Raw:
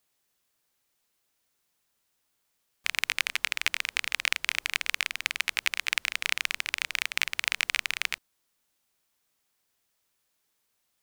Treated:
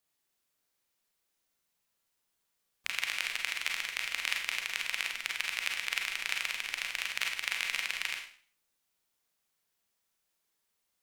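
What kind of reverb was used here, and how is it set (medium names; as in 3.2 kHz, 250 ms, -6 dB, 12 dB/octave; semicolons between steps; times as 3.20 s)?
Schroeder reverb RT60 0.47 s, combs from 33 ms, DRR 1 dB; trim -7 dB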